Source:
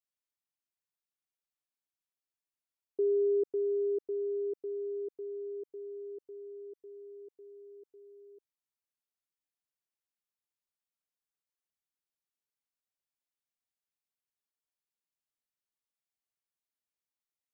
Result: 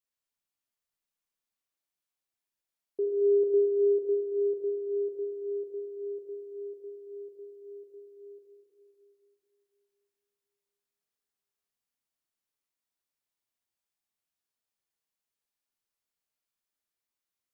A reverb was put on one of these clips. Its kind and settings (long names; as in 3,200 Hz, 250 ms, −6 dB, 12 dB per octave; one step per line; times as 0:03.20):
four-comb reverb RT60 3.2 s, combs from 27 ms, DRR −0.5 dB